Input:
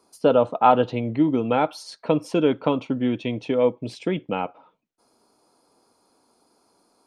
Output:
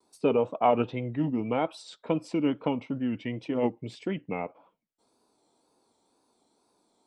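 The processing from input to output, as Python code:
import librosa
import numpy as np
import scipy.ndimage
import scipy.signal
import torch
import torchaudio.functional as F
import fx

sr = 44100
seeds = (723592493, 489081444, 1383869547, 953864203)

y = fx.formant_shift(x, sr, semitones=-2)
y = fx.wow_flutter(y, sr, seeds[0], rate_hz=2.1, depth_cents=86.0)
y = y * 10.0 ** (-6.5 / 20.0)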